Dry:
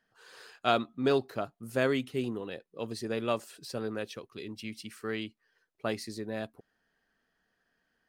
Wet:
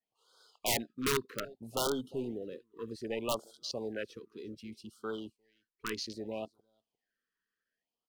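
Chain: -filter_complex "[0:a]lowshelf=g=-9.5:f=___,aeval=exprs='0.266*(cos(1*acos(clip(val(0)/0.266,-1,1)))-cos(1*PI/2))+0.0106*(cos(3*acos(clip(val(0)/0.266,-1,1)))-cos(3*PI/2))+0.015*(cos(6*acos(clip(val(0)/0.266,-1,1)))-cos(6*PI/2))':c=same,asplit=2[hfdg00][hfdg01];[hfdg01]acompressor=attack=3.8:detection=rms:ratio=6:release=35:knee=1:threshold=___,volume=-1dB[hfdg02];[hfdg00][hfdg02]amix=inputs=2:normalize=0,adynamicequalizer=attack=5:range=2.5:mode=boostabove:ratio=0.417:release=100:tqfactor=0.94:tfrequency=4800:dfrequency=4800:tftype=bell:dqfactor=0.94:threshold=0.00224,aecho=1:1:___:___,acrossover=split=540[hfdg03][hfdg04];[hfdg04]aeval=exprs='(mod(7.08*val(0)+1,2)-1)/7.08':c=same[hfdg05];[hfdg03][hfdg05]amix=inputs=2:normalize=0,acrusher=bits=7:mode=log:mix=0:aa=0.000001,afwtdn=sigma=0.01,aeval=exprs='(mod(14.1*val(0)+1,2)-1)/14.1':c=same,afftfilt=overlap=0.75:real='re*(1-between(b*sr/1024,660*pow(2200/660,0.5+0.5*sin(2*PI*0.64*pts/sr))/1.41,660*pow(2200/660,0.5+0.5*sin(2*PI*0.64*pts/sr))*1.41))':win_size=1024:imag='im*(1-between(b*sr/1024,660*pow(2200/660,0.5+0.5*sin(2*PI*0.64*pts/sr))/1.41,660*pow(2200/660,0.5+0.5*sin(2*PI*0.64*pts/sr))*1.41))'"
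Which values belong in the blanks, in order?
320, -47dB, 352, 0.1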